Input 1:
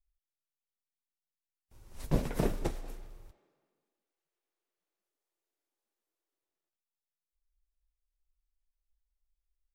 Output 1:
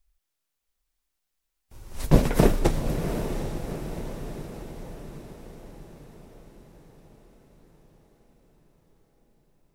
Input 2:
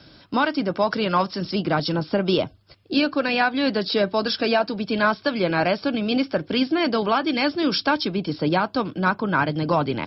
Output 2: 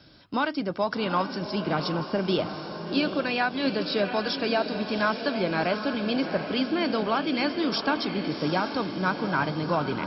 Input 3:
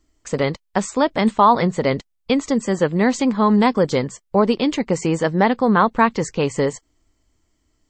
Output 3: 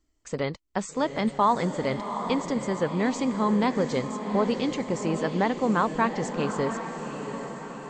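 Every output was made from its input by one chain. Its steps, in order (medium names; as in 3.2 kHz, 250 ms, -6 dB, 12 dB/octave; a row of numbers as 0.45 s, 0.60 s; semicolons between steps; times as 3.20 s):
echo that smears into a reverb 759 ms, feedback 57%, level -8 dB; normalise loudness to -27 LUFS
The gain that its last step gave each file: +11.5 dB, -5.5 dB, -8.5 dB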